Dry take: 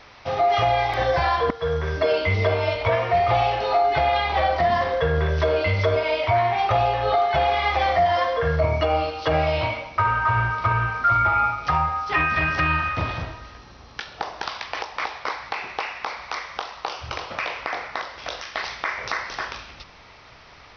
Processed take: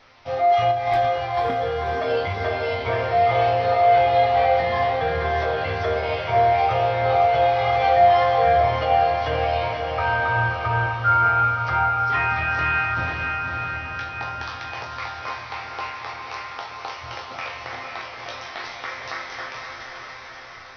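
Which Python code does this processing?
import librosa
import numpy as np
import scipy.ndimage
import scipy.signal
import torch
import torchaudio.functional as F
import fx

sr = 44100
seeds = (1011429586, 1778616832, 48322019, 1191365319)

y = fx.over_compress(x, sr, threshold_db=-25.0, ratio=-0.5, at=(0.71, 1.45))
y = fx.resonator_bank(y, sr, root=41, chord='sus4', decay_s=0.29)
y = fx.echo_diffused(y, sr, ms=533, feedback_pct=65, wet_db=-4)
y = y * librosa.db_to_amplitude(7.0)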